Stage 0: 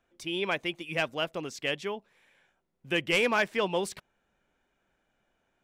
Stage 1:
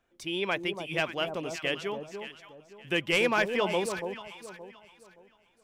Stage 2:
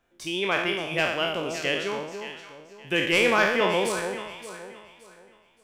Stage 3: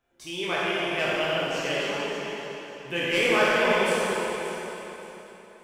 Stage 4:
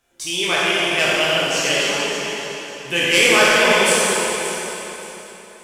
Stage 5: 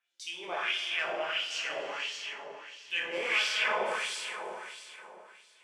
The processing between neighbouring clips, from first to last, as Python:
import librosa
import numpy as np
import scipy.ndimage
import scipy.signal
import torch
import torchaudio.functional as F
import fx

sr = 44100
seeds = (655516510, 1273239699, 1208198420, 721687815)

y1 = fx.echo_alternate(x, sr, ms=286, hz=980.0, feedback_pct=53, wet_db=-6.0)
y2 = fx.spec_trails(y1, sr, decay_s=0.79)
y2 = F.gain(torch.from_numpy(y2), 2.0).numpy()
y3 = fx.rev_plate(y2, sr, seeds[0], rt60_s=3.3, hf_ratio=0.8, predelay_ms=0, drr_db=-5.5)
y3 = F.gain(torch.from_numpy(y3), -6.5).numpy()
y4 = fx.peak_eq(y3, sr, hz=8500.0, db=13.5, octaves=2.4)
y4 = F.gain(torch.from_numpy(y4), 5.5).numpy()
y5 = fx.filter_lfo_bandpass(y4, sr, shape='sine', hz=1.5, low_hz=710.0, high_hz=4400.0, q=1.9)
y5 = F.gain(torch.from_numpy(y5), -8.5).numpy()